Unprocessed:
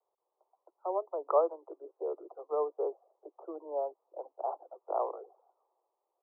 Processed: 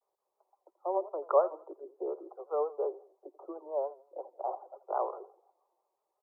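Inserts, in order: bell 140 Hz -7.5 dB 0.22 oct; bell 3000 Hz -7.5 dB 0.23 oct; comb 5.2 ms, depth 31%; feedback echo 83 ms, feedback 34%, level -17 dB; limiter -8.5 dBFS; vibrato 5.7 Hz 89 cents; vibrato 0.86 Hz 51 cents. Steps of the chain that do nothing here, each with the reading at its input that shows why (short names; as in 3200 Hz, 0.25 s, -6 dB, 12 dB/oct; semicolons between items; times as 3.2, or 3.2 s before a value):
bell 140 Hz: input band starts at 290 Hz; bell 3000 Hz: input band ends at 1400 Hz; limiter -8.5 dBFS: input peak -12.5 dBFS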